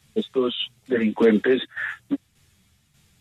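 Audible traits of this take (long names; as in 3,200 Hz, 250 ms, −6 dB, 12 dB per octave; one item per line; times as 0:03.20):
tremolo saw down 1.7 Hz, depth 60%
a shimmering, thickened sound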